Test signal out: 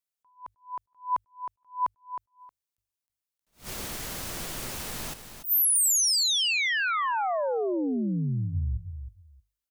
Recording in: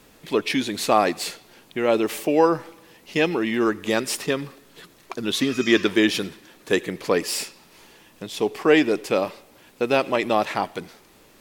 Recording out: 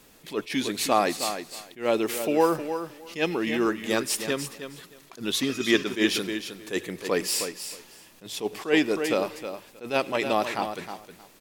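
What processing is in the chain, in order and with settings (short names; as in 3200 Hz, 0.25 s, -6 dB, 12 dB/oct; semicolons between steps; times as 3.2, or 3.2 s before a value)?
high shelf 4500 Hz +6 dB; notches 50/100 Hz; on a send: feedback echo 0.314 s, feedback 16%, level -9.5 dB; on the sum: attack slew limiter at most 230 dB/s; gain -4 dB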